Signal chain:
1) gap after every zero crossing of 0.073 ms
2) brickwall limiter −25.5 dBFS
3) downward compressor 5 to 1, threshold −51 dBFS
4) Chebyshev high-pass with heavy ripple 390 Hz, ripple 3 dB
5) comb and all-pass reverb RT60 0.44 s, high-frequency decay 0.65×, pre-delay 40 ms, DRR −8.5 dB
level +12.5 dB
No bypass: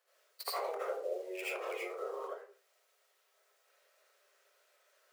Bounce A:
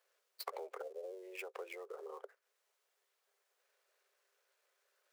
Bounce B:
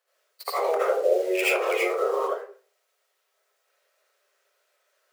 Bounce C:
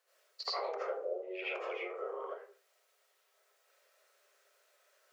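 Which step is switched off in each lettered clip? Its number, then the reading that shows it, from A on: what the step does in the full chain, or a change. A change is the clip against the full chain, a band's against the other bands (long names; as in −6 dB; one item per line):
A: 5, change in crest factor +5.5 dB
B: 3, average gain reduction 15.0 dB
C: 1, distortion level −25 dB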